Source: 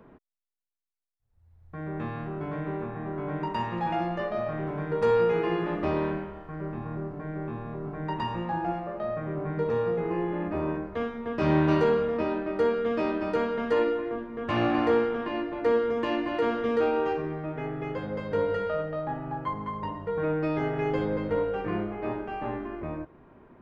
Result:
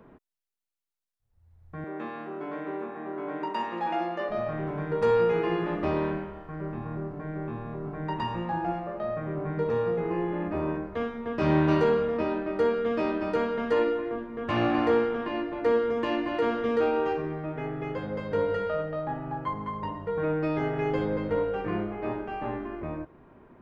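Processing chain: 1.84–4.29 s: high-pass 240 Hz 24 dB/octave

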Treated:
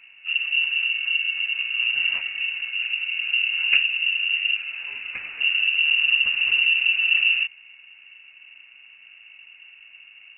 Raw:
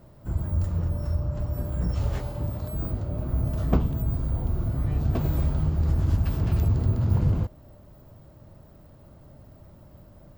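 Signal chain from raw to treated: 4.56–5.40 s: high-pass 190 Hz -> 630 Hz 6 dB/octave; frequency inversion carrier 2.8 kHz; trim +1 dB

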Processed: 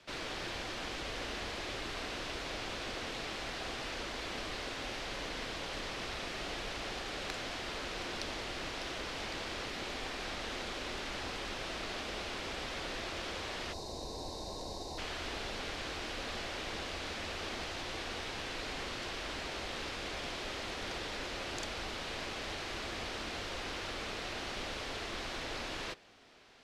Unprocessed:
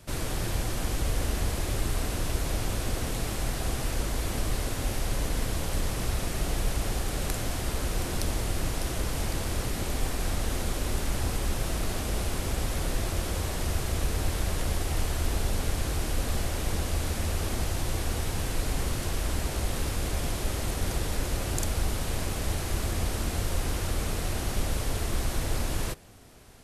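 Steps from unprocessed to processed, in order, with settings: three-band isolator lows -14 dB, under 230 Hz, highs -22 dB, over 5.3 kHz; time-frequency box 13.73–14.98 s, 1.1–3.6 kHz -20 dB; peaking EQ 3.6 kHz +7.5 dB 3 oct; trim -7 dB

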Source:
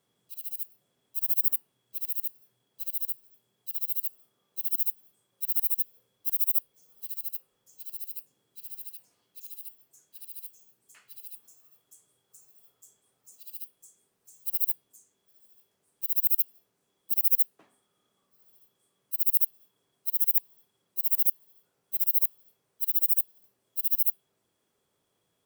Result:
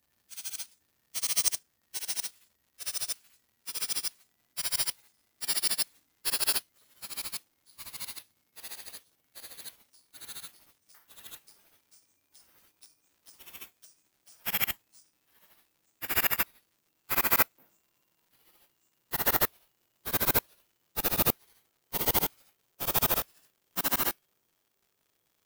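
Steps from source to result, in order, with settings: pitch bend over the whole clip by -11 st ending unshifted; careless resampling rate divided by 3×, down none, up zero stuff; crackle 200 per s -53 dBFS; trim -4.5 dB

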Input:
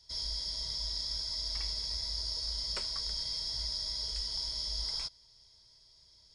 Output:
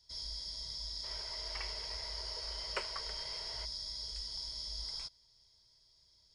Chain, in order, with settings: time-frequency box 1.04–3.65 s, 350–3200 Hz +12 dB; trim -6 dB

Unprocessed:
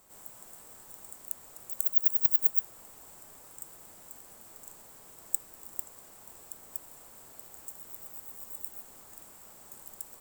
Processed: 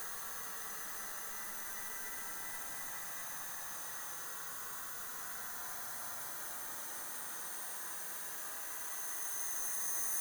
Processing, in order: every band turned upside down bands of 2 kHz; Paulstretch 29×, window 0.10 s, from 3.25 s; trim +8.5 dB

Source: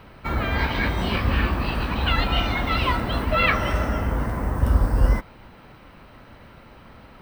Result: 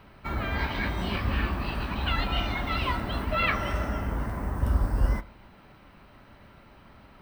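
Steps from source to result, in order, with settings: band-stop 490 Hz, Q 12; on a send: reverberation RT60 0.70 s, pre-delay 5 ms, DRR 16 dB; on the sum: trim -6 dB

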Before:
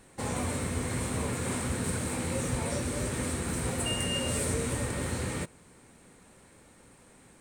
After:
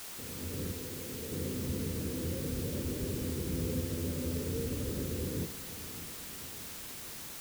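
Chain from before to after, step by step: peak limiter -27.5 dBFS, peak gain reduction 10 dB; steep low-pass 500 Hz 48 dB/octave; hum notches 60/120/180/240 Hz; two-band feedback delay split 360 Hz, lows 604 ms, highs 451 ms, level -14 dB; level rider gain up to 11.5 dB; 3.52–4.41 s: doubling 12 ms -4 dB; word length cut 6-bit, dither triangular; 0.72–1.32 s: bass shelf 340 Hz -11 dB; trim -8.5 dB

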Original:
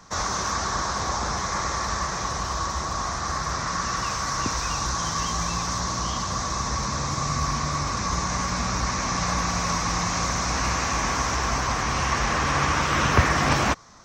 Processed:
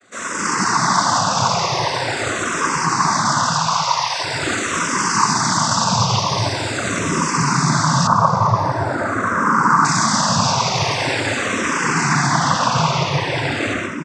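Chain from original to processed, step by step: delay 125 ms -9.5 dB; level rider; saturation -16 dBFS, distortion -11 dB; 3.50–4.18 s: steep high-pass 690 Hz; simulated room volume 1000 m³, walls mixed, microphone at 2.2 m; vibrato 0.93 Hz 51 cents; noise-vocoded speech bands 16; 8.07–9.85 s: resonant high shelf 1.9 kHz -12 dB, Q 3; barber-pole phaser -0.44 Hz; trim +1.5 dB

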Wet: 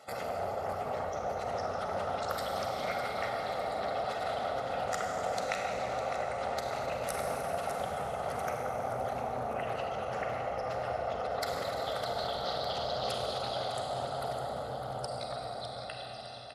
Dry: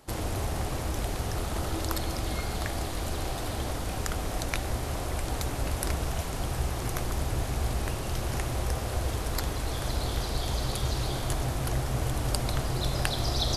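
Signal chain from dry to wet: fade out at the end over 2.89 s; spectral gate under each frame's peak -25 dB strong; high-pass 330 Hz 12 dB/octave; treble shelf 8.3 kHz -11 dB; comb 1.5 ms, depth 90%; compression 1.5:1, threshold -41 dBFS, peak gain reduction 6 dB; tempo 0.82×; on a send: feedback delay 606 ms, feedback 54%, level -10.5 dB; on the sum: Schroeder reverb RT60 3.3 s, combs from 33 ms, DRR 0 dB; loudspeaker Doppler distortion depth 0.25 ms; trim +1.5 dB

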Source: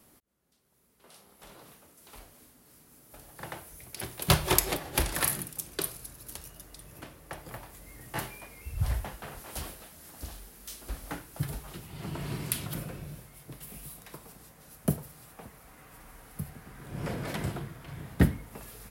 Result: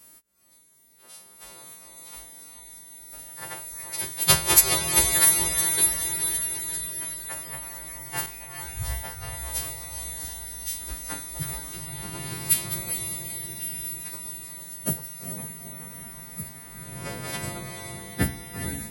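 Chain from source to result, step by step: partials quantised in pitch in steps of 2 st; 8.26–9.34 s: expander -36 dBFS; echo that smears into a reverb 450 ms, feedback 60%, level -6 dB

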